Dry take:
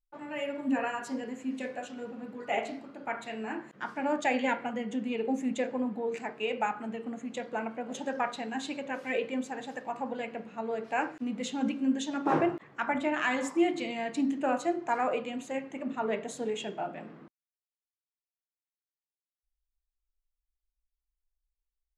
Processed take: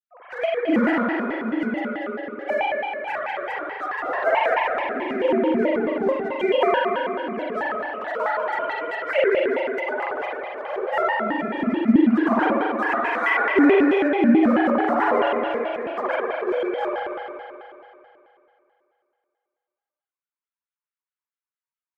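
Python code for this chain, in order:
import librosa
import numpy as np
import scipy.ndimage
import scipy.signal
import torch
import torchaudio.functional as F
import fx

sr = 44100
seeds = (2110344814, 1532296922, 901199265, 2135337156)

p1 = fx.sine_speech(x, sr)
p2 = scipy.signal.sosfilt(scipy.signal.bessel(8, 200.0, 'highpass', norm='mag', fs=sr, output='sos'), p1)
p3 = fx.peak_eq(p2, sr, hz=1400.0, db=9.5, octaves=0.68)
p4 = p3 + 10.0 ** (-23.5 / 20.0) * np.pad(p3, (int(218 * sr / 1000.0), 0))[:len(p3)]
p5 = np.sign(p4) * np.maximum(np.abs(p4) - 10.0 ** (-40.5 / 20.0), 0.0)
p6 = p4 + (p5 * 10.0 ** (-7.5 / 20.0))
p7 = fx.rev_spring(p6, sr, rt60_s=2.7, pass_ms=(47,), chirp_ms=30, drr_db=-7.0)
y = fx.vibrato_shape(p7, sr, shape='square', rate_hz=4.6, depth_cents=250.0)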